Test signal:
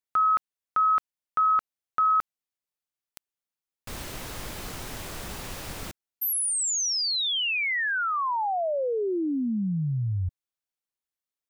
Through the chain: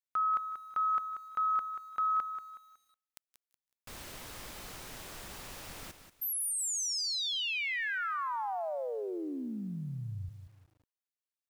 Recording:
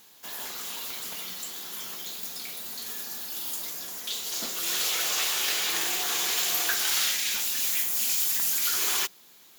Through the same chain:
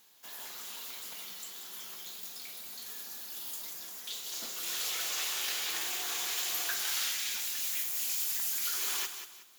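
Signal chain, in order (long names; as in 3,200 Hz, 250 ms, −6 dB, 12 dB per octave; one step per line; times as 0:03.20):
low-shelf EQ 440 Hz −5 dB
on a send: delay with a high-pass on its return 169 ms, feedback 30%, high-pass 1,600 Hz, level −20 dB
on the sum: feedback echo at a low word length 185 ms, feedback 35%, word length 9 bits, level −9.5 dB
level −7.5 dB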